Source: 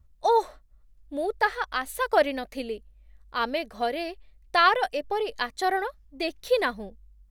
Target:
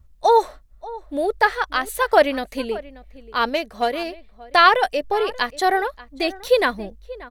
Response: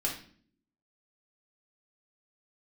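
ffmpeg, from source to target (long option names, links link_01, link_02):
-filter_complex "[0:a]asplit=2[link_01][link_02];[link_02]adelay=583.1,volume=-18dB,highshelf=frequency=4000:gain=-13.1[link_03];[link_01][link_03]amix=inputs=2:normalize=0,asettb=1/sr,asplit=3[link_04][link_05][link_06];[link_04]atrim=end=3.494[link_07];[link_05]atrim=start=3.49:end=4.56,asetpts=PTS-STARTPTS,afade=type=in:duration=0.004:curve=qsin,afade=type=out:start_time=1.066:duration=0.004:curve=qsin,aeval=exprs='0.237*(cos(1*acos(clip(val(0)/0.237,-1,1)))-cos(1*PI/2))+0.00944*(cos(7*acos(clip(val(0)/0.237,-1,1)))-cos(7*PI/2))':channel_layout=same[link_08];[link_06]atrim=start=4.556[link_09];[link_07][link_08]acrossfade=duration=0.004:curve1=hsin:curve2=qsin[link_10];[link_10][link_09]acrossfade=duration=0.004:curve1=qsin:curve2=hsin,volume=6.5dB"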